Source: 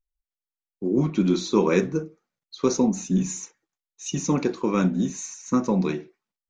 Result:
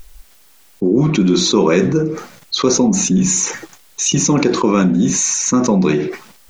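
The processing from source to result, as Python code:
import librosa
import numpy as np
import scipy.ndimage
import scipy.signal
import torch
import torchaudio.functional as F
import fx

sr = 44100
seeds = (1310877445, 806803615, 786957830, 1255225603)

y = fx.env_flatten(x, sr, amount_pct=70)
y = y * 10.0 ** (5.0 / 20.0)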